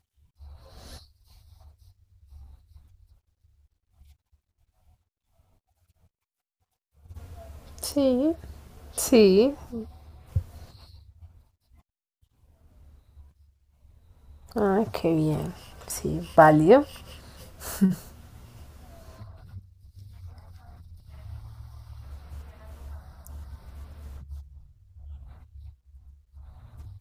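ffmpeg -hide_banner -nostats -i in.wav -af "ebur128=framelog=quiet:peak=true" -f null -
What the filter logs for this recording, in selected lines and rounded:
Integrated loudness:
  I:         -23.3 LUFS
  Threshold: -39.7 LUFS
Loudness range:
  LRA:        23.7 LU
  Threshold: -49.6 LUFS
  LRA low:   -46.6 LUFS
  LRA high:  -22.9 LUFS
True peak:
  Peak:       -2.8 dBFS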